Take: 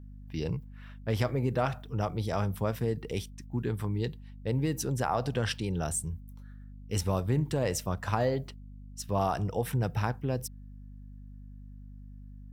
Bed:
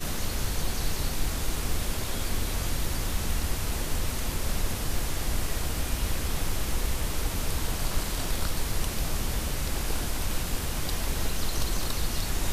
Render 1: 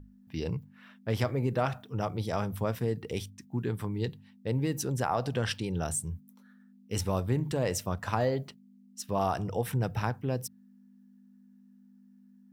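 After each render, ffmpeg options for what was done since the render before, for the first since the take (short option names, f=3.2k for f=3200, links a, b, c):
-af "bandreject=f=50:t=h:w=6,bandreject=f=100:t=h:w=6,bandreject=f=150:t=h:w=6"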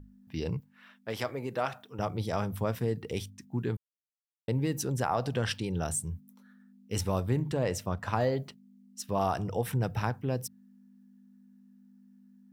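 -filter_complex "[0:a]asettb=1/sr,asplit=3[a][b][c];[a]atrim=end=0.604[d];[b]atrim=start=0.6:end=1.99,asetpts=PTS-STARTPTS,afade=t=in:d=0.004:c=qsin,afade=t=out:st=1.386:d=0.004:c=qsin,highpass=f=470:p=1[e];[c]atrim=start=1.986[f];[d][e]acrossfade=d=0.004:c1=hsin:c2=qsin[g];[g][f]acrossfade=d=0.004:c1=qsin:c2=hsin,asettb=1/sr,asplit=3[h][i][j];[h]atrim=end=7.434[k];[i]atrim=start=7.43:end=8.15,asetpts=PTS-STARTPTS,afade=t=in:d=0.004:c=qsin,afade=t=out:st=0.716:d=0.004:c=qsin,highshelf=f=4.8k:g=-6.5[l];[j]atrim=start=8.146[m];[k][l]acrossfade=d=0.004:c1=hsin:c2=qsin[n];[n][m]acrossfade=d=0.004:c1=qsin:c2=hsin,asplit=3[o][p][q];[o]atrim=end=3.77,asetpts=PTS-STARTPTS,afade=t=out:st=3.766:d=0.004:c=hsin[r];[p]atrim=start=3.77:end=4.48,asetpts=PTS-STARTPTS,volume=0[s];[q]atrim=start=4.48,asetpts=PTS-STARTPTS,afade=t=in:d=0.004:c=hsin[t];[r][s][t]concat=n=3:v=0:a=1"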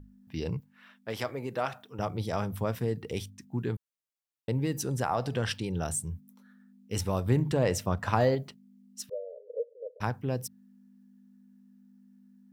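-filter_complex "[0:a]asettb=1/sr,asplit=3[a][b][c];[a]atrim=end=4.674[d];[b]atrim=start=4.67:end=5.5,asetpts=PTS-STARTPTS,afade=t=in:d=0.004:c=qsin,afade=t=out:st=0.826:d=0.004:c=qsin,bandreject=f=434.3:t=h:w=4,bandreject=f=868.6:t=h:w=4,bandreject=f=1.3029k:t=h:w=4,bandreject=f=1.7372k:t=h:w=4,bandreject=f=2.1715k:t=h:w=4,bandreject=f=2.6058k:t=h:w=4,bandreject=f=3.0401k:t=h:w=4,bandreject=f=3.4744k:t=h:w=4,bandreject=f=3.9087k:t=h:w=4,bandreject=f=4.343k:t=h:w=4,bandreject=f=4.7773k:t=h:w=4,bandreject=f=5.2116k:t=h:w=4,bandreject=f=5.6459k:t=h:w=4,bandreject=f=6.0802k:t=h:w=4,bandreject=f=6.5145k:t=h:w=4,bandreject=f=6.9488k:t=h:w=4,bandreject=f=7.3831k:t=h:w=4,bandreject=f=7.8174k:t=h:w=4,bandreject=f=8.2517k:t=h:w=4,bandreject=f=8.686k:t=h:w=4,bandreject=f=9.1203k:t=h:w=4,bandreject=f=9.5546k:t=h:w=4,bandreject=f=9.9889k:t=h:w=4[e];[c]atrim=start=5.496[f];[d][e]acrossfade=d=0.004:c1=hsin:c2=qsin[g];[g][f]acrossfade=d=0.004:c1=qsin:c2=hsin,asplit=3[h][i][j];[h]afade=t=out:st=9.08:d=0.02[k];[i]asuperpass=centerf=510:order=12:qfactor=2.9,afade=t=in:st=9.08:d=0.02,afade=t=out:st=10:d=0.02[l];[j]afade=t=in:st=10:d=0.02[m];[k][l][m]amix=inputs=3:normalize=0,asplit=3[n][o][p];[n]atrim=end=7.262[q];[o]atrim=start=7.258:end=8.352,asetpts=PTS-STARTPTS,volume=3.5dB[r];[p]atrim=start=8.348[s];[q][r]acrossfade=d=0.004:c1=hsin:c2=hsin[t];[t][s]acrossfade=d=0.004:c1=hsin:c2=hsin"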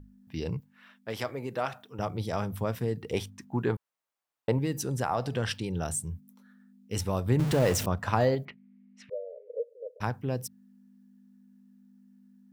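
-filter_complex "[0:a]asettb=1/sr,asplit=3[a][b][c];[a]atrim=end=3.134[d];[b]atrim=start=3.13:end=4.59,asetpts=PTS-STARTPTS,afade=t=in:d=0.004:c=qsin,afade=t=out:st=1.456:d=0.004:c=qsin,equalizer=f=910:w=0.54:g=11.5[e];[c]atrim=start=4.586[f];[d][e]acrossfade=d=0.004:c1=hsin:c2=qsin[g];[g][f]acrossfade=d=0.004:c1=qsin:c2=hsin,asettb=1/sr,asplit=3[h][i][j];[h]atrim=end=7.394[k];[i]atrim=start=7.39:end=7.86,asetpts=PTS-STARTPTS,afade=t=in:d=0.004:c=qsin,afade=t=out:st=0.466:d=0.004:c=qsin,aeval=exprs='val(0)+0.5*0.0355*sgn(val(0))':c=same[l];[j]atrim=start=7.856[m];[k][l]acrossfade=d=0.004:c1=hsin:c2=qsin[n];[n][m]acrossfade=d=0.004:c1=qsin:c2=hsin,asettb=1/sr,asplit=3[o][p][q];[o]atrim=end=8.454[r];[p]atrim=start=8.45:end=9.54,asetpts=PTS-STARTPTS,afade=t=in:d=0.004:c=qsin,afade=t=out:st=1.086:d=0.004:c=qsin,lowpass=f=2.2k:t=q:w=4.9[s];[q]atrim=start=9.536[t];[r][s]acrossfade=d=0.004:c1=hsin:c2=qsin[u];[u][t]acrossfade=d=0.004:c1=qsin:c2=hsin"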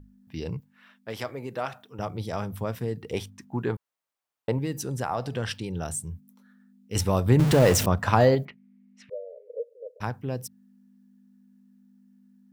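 -filter_complex "[0:a]asettb=1/sr,asplit=3[a][b][c];[a]atrim=end=6.954[d];[b]atrim=start=6.95:end=8.47,asetpts=PTS-STARTPTS,afade=t=in:d=0.004:c=qsin,afade=t=out:st=1.516:d=0.004:c=qsin,acontrast=55[e];[c]atrim=start=8.466[f];[d][e]acrossfade=d=0.004:c1=hsin:c2=qsin[g];[g][f]acrossfade=d=0.004:c1=qsin:c2=hsin"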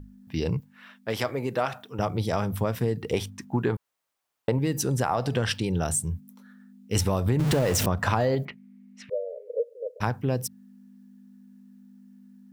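-filter_complex "[0:a]asplit=2[a][b];[b]alimiter=limit=-17dB:level=0:latency=1:release=36,volume=1dB[c];[a][c]amix=inputs=2:normalize=0,acompressor=threshold=-20dB:ratio=10"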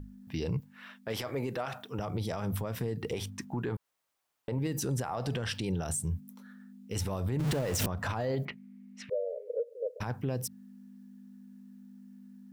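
-af "acompressor=threshold=-26dB:ratio=6,alimiter=level_in=0.5dB:limit=-24dB:level=0:latency=1:release=12,volume=-0.5dB"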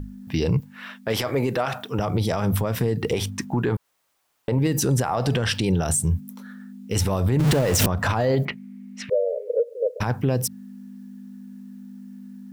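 -af "volume=11dB"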